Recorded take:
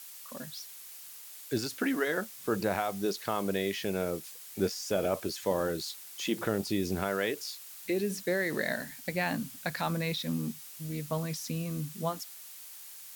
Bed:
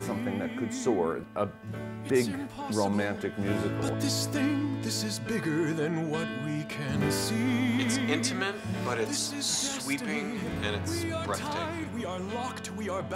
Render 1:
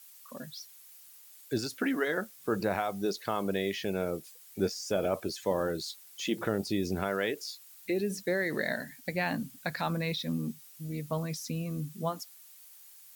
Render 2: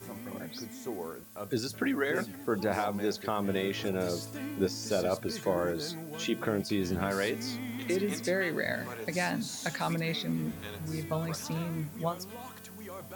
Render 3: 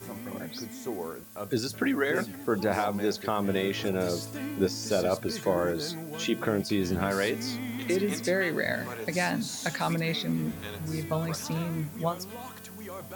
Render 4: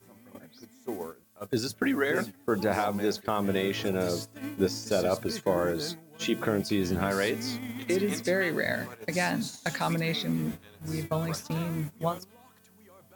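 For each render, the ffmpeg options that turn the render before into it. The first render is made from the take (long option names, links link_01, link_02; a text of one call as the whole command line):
ffmpeg -i in.wav -af "afftdn=noise_reduction=9:noise_floor=-48" out.wav
ffmpeg -i in.wav -i bed.wav -filter_complex "[1:a]volume=-11dB[link_01];[0:a][link_01]amix=inputs=2:normalize=0" out.wav
ffmpeg -i in.wav -af "volume=3dB" out.wav
ffmpeg -i in.wav -af "agate=range=-15dB:threshold=-34dB:ratio=16:detection=peak" out.wav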